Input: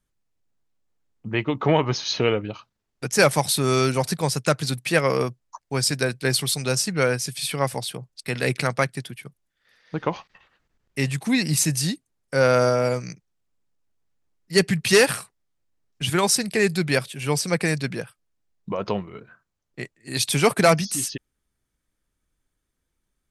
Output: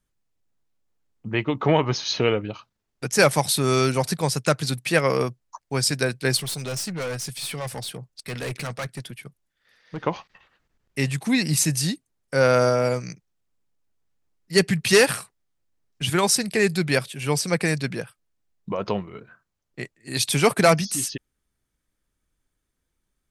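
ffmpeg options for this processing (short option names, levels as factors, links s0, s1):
-filter_complex "[0:a]asettb=1/sr,asplit=3[s0][s1][s2];[s0]atrim=end=6.374[s3];[s1]atrim=start=6.37:end=10.03,asetpts=PTS-STARTPTS,afade=t=in:d=0.004:c=qsin,afade=t=out:st=3.656:d=0.004:c=qsin,aeval=exprs='(tanh(20*val(0)+0.15)-tanh(0.15))/20':c=same[s4];[s2]atrim=start=10.026[s5];[s3][s4]acrossfade=d=0.004:c1=hsin:c2=qsin[s6];[s6][s5]acrossfade=d=0.004:c1=qsin:c2=hsin"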